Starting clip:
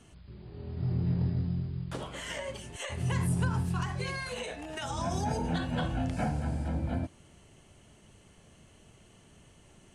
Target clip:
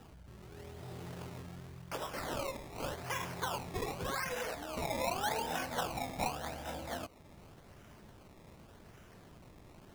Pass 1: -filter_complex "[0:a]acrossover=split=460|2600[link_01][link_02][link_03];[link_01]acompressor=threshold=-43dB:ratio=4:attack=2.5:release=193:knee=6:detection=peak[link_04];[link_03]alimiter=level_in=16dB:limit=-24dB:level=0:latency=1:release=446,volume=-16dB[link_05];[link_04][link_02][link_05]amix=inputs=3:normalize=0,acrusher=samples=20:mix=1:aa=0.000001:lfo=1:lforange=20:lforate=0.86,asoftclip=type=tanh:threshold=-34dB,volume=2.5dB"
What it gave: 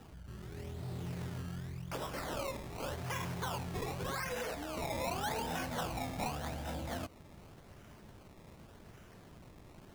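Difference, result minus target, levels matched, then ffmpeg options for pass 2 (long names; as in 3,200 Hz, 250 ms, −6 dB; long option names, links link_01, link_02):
soft clipping: distortion +12 dB; downward compressor: peak gain reduction −7.5 dB
-filter_complex "[0:a]acrossover=split=460|2600[link_01][link_02][link_03];[link_01]acompressor=threshold=-53dB:ratio=4:attack=2.5:release=193:knee=6:detection=peak[link_04];[link_03]alimiter=level_in=16dB:limit=-24dB:level=0:latency=1:release=446,volume=-16dB[link_05];[link_04][link_02][link_05]amix=inputs=3:normalize=0,acrusher=samples=20:mix=1:aa=0.000001:lfo=1:lforange=20:lforate=0.86,asoftclip=type=tanh:threshold=-26dB,volume=2.5dB"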